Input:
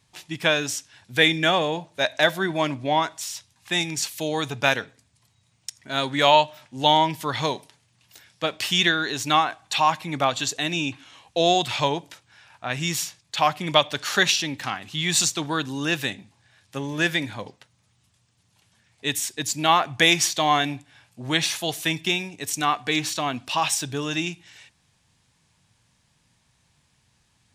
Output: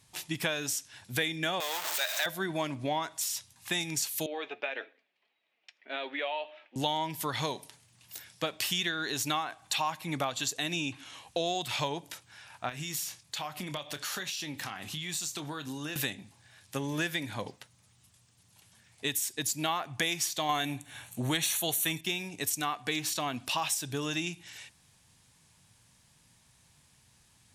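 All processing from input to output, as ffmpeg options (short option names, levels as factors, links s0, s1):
-filter_complex "[0:a]asettb=1/sr,asplit=3[s0][s1][s2];[s0]atrim=end=1.604[s3];[s1]atrim=start=1.6:end=2.26,asetpts=PTS-STARTPTS,afade=t=in:d=0.004:c=qsin,afade=t=out:st=0.656:d=0.004:c=qsin,aeval=exprs='val(0)+0.5*0.112*sgn(val(0))':c=same,highpass=1000,equalizer=f=11000:t=o:w=0.28:g=-15[s4];[s2]atrim=start=2.256[s5];[s3][s4]acrossfade=d=0.004:c1=hsin:c2=qsin[s6];[s6][s5]acrossfade=d=0.004:c1=qsin:c2=hsin,asettb=1/sr,asplit=3[s7][s8][s9];[s7]atrim=end=4.264[s10];[s8]atrim=start=4.26:end=6.76,asetpts=PTS-STARTPTS,afade=t=in:d=0.004:c=qsin,afade=t=out:st=2.496:d=0.004:c=qsin,acompressor=threshold=0.0891:ratio=6:attack=3.2:release=140:knee=1:detection=peak,flanger=delay=3:depth=2.6:regen=64:speed=1.7:shape=sinusoidal,highpass=f=360:w=0.5412,highpass=f=360:w=1.3066,equalizer=f=990:t=q:w=4:g=-8,equalizer=f=1400:t=q:w=4:g=-4,equalizer=f=2500:t=q:w=4:g=3,lowpass=f=3000:w=0.5412,lowpass=f=3000:w=1.3066[s11];[s9]atrim=start=6.756[s12];[s10][s11]acrossfade=d=0.004:c1=hsin:c2=qsin[s13];[s13][s12]acrossfade=d=0.004:c1=qsin:c2=hsin,asettb=1/sr,asplit=3[s14][s15][s16];[s14]atrim=end=12.694[s17];[s15]atrim=start=12.69:end=15.96,asetpts=PTS-STARTPTS,afade=t=in:d=0.004:c=qsin,afade=t=out:st=3.266:d=0.004:c=qsin,acompressor=threshold=0.0178:ratio=6:attack=3.2:release=140:knee=1:detection=peak,asplit=2[s18][s19];[s19]adelay=27,volume=0.282[s20];[s18][s20]amix=inputs=2:normalize=0,atrim=end_sample=144207[s21];[s16]atrim=start=15.956[s22];[s17][s21]acrossfade=d=0.004:c1=hsin:c2=qsin[s23];[s23][s22]acrossfade=d=0.004:c1=qsin:c2=hsin,asettb=1/sr,asplit=3[s24][s25][s26];[s24]atrim=end=20.494[s27];[s25]atrim=start=20.49:end=22.01,asetpts=PTS-STARTPTS,afade=t=in:d=0.004:c=qsin,afade=t=out:st=1.516:d=0.004:c=qsin,highshelf=f=8100:g=7.5,acontrast=56,asuperstop=centerf=5000:order=4:qfactor=4.4[s28];[s26]atrim=start=22.006[s29];[s27][s28]acrossfade=d=0.004:c1=hsin:c2=qsin[s30];[s30][s29]acrossfade=d=0.004:c1=qsin:c2=hsin,equalizer=f=13000:t=o:w=1:g=11,acompressor=threshold=0.0316:ratio=4"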